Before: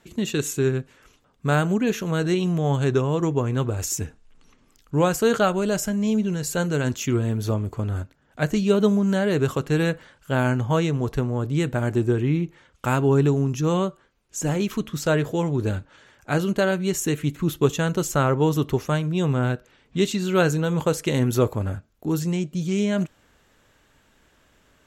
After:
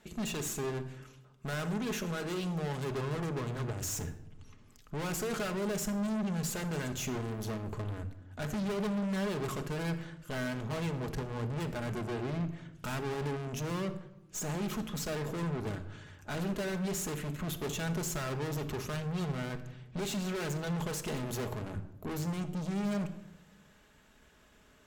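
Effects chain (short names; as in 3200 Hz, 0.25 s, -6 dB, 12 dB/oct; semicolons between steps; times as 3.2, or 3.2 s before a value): 0.7–2.91 low shelf 180 Hz -8 dB; tube stage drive 35 dB, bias 0.65; shoebox room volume 3700 m³, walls furnished, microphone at 1.4 m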